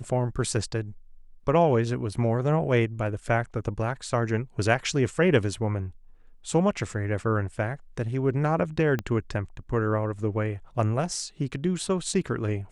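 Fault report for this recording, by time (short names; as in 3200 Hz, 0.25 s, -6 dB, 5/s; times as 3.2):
8.99 pop -16 dBFS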